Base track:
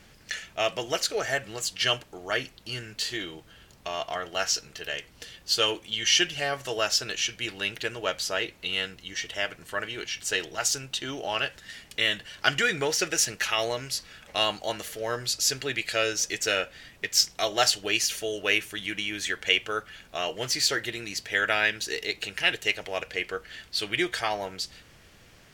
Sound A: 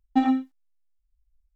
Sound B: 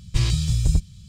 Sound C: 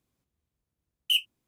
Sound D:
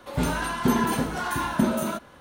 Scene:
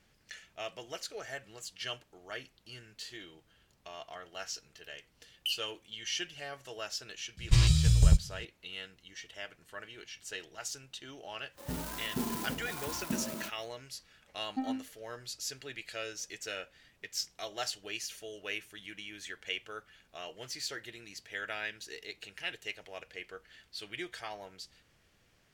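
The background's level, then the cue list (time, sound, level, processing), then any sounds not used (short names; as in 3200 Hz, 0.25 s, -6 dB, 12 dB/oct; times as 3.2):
base track -14 dB
4.36 add C -1 dB + compressor, threshold -29 dBFS
7.37 add B -2 dB + bell 280 Hz -6.5 dB 0.92 oct
11.51 add D -13 dB, fades 0.10 s + clock jitter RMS 0.13 ms
14.41 add A -13.5 dB + air absorption 350 m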